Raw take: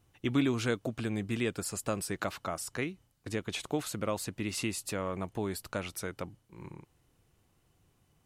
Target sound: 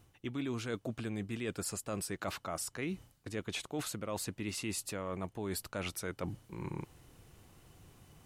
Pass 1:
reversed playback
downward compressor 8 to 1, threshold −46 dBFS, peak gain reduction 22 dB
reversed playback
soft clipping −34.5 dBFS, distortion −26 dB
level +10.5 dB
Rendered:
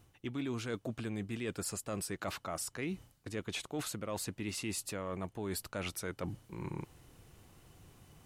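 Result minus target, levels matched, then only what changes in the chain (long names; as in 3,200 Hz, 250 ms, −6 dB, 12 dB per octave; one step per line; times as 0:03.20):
soft clipping: distortion +13 dB
change: soft clipping −27.5 dBFS, distortion −39 dB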